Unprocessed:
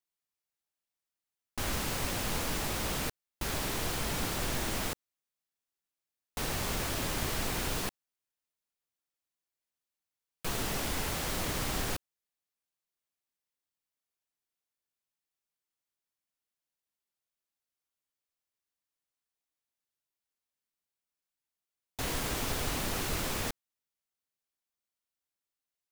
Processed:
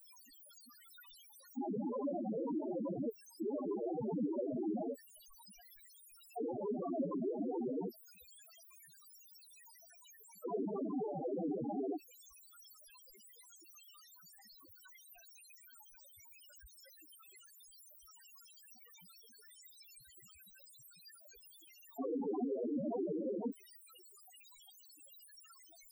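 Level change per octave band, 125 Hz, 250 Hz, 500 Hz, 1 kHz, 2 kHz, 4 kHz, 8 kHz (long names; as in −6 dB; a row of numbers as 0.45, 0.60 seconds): −13.0, +2.5, +2.0, −8.5, −25.0, −21.5, −19.0 decibels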